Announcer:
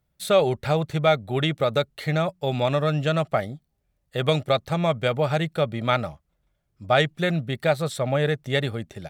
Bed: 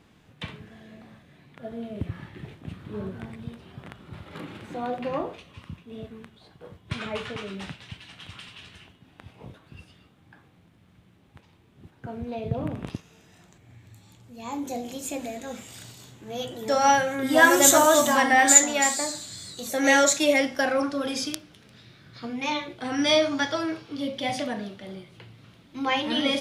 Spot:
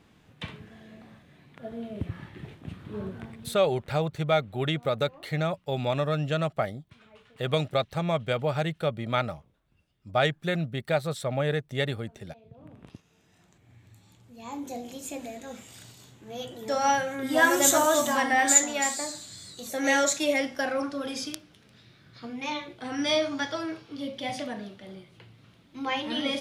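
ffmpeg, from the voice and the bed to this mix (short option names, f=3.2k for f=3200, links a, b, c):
-filter_complex "[0:a]adelay=3250,volume=-4.5dB[a];[1:a]volume=17dB,afade=t=out:st=3.11:d=0.89:silence=0.0841395,afade=t=in:st=12.56:d=1.24:silence=0.11885[b];[a][b]amix=inputs=2:normalize=0"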